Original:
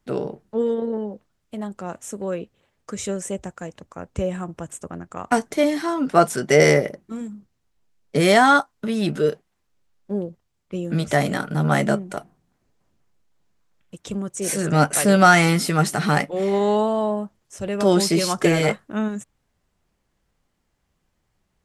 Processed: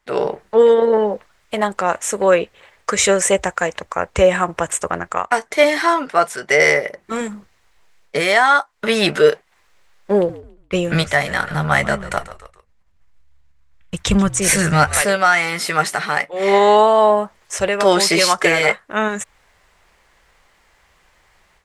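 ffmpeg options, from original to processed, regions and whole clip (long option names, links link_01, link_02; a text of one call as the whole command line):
ffmpeg -i in.wav -filter_complex "[0:a]asettb=1/sr,asplit=3[link_01][link_02][link_03];[link_01]atrim=end=10.154[link_04];[link_02]atrim=start=10.15:end=15.02,asetpts=PTS-STARTPTS,afade=type=in:duration=0.004:curve=qsin,afade=type=out:start_time=4.866:duration=0.004:curve=qsin,agate=range=-33dB:threshold=-55dB:ratio=3:release=100:detection=peak,asubboost=boost=9:cutoff=160,asplit=4[link_05][link_06][link_07][link_08];[link_06]adelay=140,afreqshift=-72,volume=-17dB[link_09];[link_07]adelay=280,afreqshift=-144,volume=-27.2dB[link_10];[link_08]adelay=420,afreqshift=-216,volume=-37.3dB[link_11];[link_05][link_09][link_10][link_11]amix=inputs=4:normalize=0,atrim=end_sample=214767[link_12];[link_03]atrim=start=15.016[link_13];[link_04][link_12]acrossfade=duration=0.004:curve1=hsin:curve2=qsin[link_14];[link_14][link_13]acrossfade=duration=0.004:curve1=qsin:curve2=hsin,equalizer=frequency=125:width_type=o:width=1:gain=-7,equalizer=frequency=250:width_type=o:width=1:gain=-8,equalizer=frequency=500:width_type=o:width=1:gain=4,equalizer=frequency=1000:width_type=o:width=1:gain=6,equalizer=frequency=2000:width_type=o:width=1:gain=10,equalizer=frequency=4000:width_type=o:width=1:gain=4,equalizer=frequency=8000:width_type=o:width=1:gain=3,dynaudnorm=framelen=110:gausssize=3:maxgain=13.5dB,volume=-1dB" out.wav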